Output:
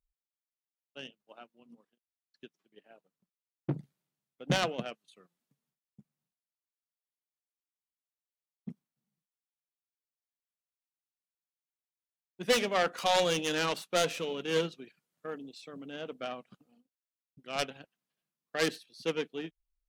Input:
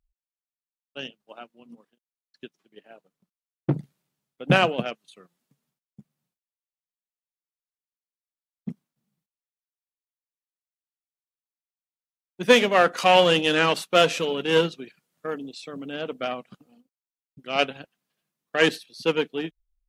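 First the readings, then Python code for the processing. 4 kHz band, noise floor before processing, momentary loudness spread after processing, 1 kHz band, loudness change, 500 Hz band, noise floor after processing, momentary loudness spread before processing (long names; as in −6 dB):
−9.0 dB, below −85 dBFS, 20 LU, −10.0 dB, −10.0 dB, −10.0 dB, below −85 dBFS, 20 LU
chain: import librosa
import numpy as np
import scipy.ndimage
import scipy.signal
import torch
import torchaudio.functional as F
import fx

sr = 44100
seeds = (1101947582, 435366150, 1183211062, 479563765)

y = fx.self_delay(x, sr, depth_ms=0.22)
y = y * 10.0 ** (-9.0 / 20.0)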